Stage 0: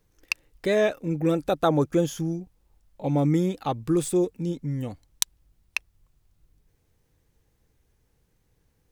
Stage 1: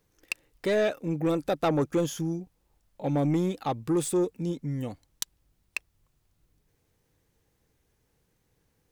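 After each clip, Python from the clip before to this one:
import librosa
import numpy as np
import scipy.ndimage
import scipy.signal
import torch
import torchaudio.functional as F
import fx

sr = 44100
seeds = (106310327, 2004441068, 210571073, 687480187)

y = fx.low_shelf(x, sr, hz=79.0, db=-10.0)
y = 10.0 ** (-18.5 / 20.0) * np.tanh(y / 10.0 ** (-18.5 / 20.0))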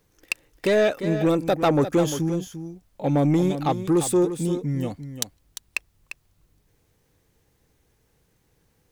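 y = x + 10.0 ** (-10.5 / 20.0) * np.pad(x, (int(348 * sr / 1000.0), 0))[:len(x)]
y = F.gain(torch.from_numpy(y), 5.5).numpy()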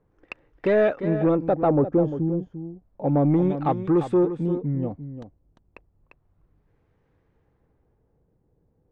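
y = fx.filter_lfo_lowpass(x, sr, shape='sine', hz=0.32, low_hz=590.0, high_hz=1700.0, q=0.83)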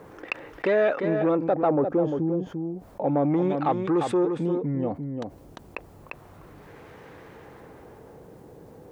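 y = fx.highpass(x, sr, hz=460.0, slope=6)
y = fx.env_flatten(y, sr, amount_pct=50)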